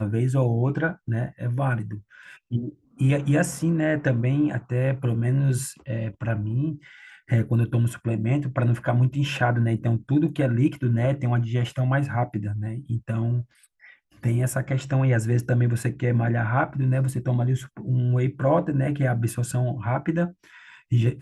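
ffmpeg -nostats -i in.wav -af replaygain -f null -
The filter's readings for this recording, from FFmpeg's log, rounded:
track_gain = +6.7 dB
track_peak = 0.250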